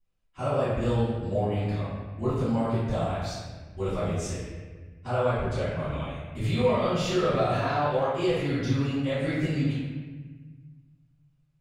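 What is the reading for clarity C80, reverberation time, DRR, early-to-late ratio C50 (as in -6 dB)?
0.5 dB, 1.4 s, -18.0 dB, -2.0 dB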